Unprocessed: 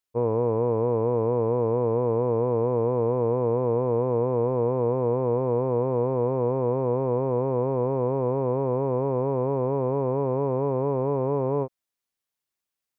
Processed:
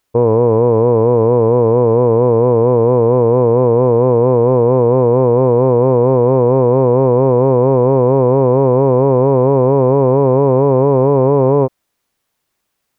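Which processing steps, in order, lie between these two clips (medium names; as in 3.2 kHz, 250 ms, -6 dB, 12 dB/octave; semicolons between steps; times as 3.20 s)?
treble shelf 2.1 kHz -7 dB; loudness maximiser +21.5 dB; trim -1 dB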